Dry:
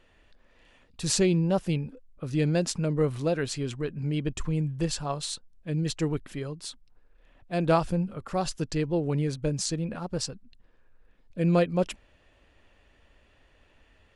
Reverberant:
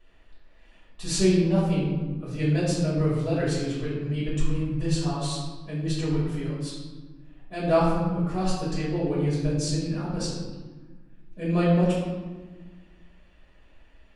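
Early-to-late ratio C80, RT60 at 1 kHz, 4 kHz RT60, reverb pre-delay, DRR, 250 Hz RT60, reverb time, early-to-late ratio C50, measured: 3.0 dB, 1.3 s, 0.80 s, 3 ms, -9.0 dB, 2.2 s, 1.4 s, 0.5 dB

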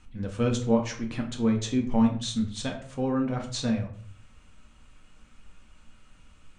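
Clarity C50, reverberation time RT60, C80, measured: 9.5 dB, 0.55 s, 13.0 dB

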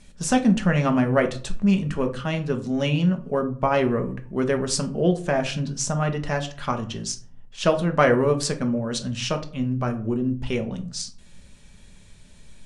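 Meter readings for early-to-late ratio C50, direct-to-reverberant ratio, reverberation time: 14.0 dB, 5.0 dB, 0.45 s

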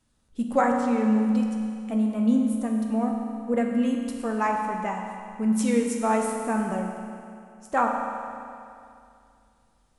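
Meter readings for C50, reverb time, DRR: 2.5 dB, 2.5 s, 0.5 dB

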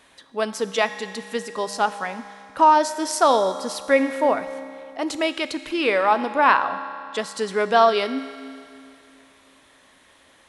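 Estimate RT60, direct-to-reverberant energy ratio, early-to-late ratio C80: 2.6 s, 10.0 dB, 12.0 dB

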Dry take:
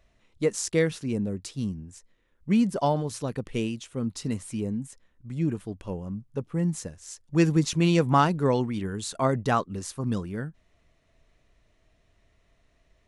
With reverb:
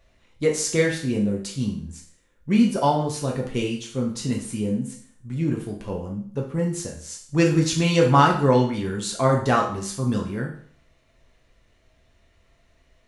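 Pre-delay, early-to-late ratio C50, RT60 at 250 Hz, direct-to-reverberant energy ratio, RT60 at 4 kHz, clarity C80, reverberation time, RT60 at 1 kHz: 6 ms, 7.0 dB, 0.55 s, -1.0 dB, 0.55 s, 11.5 dB, 0.55 s, 0.55 s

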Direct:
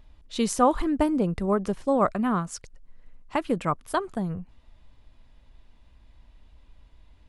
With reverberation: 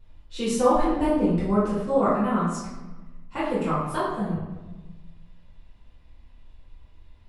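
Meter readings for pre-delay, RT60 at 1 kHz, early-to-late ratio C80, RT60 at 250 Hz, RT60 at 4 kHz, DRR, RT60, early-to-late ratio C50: 3 ms, 1.1 s, 4.0 dB, 1.5 s, 0.80 s, -11.0 dB, 1.2 s, 0.5 dB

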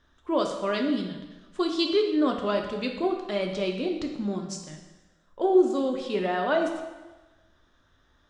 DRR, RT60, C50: 2.5 dB, 1.2 s, 5.5 dB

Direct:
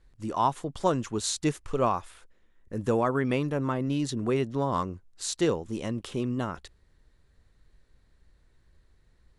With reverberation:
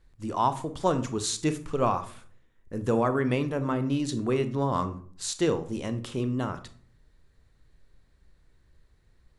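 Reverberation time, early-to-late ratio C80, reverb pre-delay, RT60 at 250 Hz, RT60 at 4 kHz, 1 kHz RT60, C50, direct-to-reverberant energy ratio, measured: 0.50 s, 18.5 dB, 31 ms, 0.75 s, 0.30 s, 0.45 s, 13.5 dB, 10.0 dB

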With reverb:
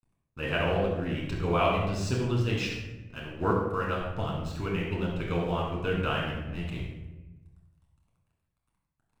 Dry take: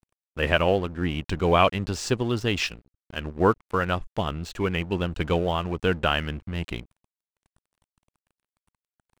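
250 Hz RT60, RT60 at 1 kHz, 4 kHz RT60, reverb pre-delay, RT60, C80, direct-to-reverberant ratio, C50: 1.6 s, 0.95 s, 0.65 s, 7 ms, 1.1 s, 4.0 dB, -3.5 dB, 1.5 dB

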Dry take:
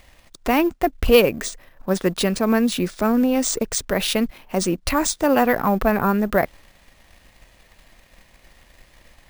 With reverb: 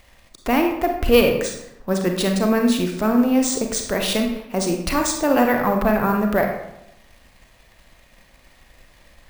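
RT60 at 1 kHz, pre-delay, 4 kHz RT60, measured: 0.85 s, 31 ms, 0.60 s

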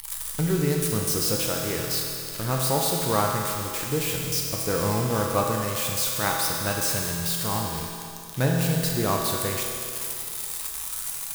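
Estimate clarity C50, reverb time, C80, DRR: 0.5 dB, 2.7 s, 2.0 dB, -1.5 dB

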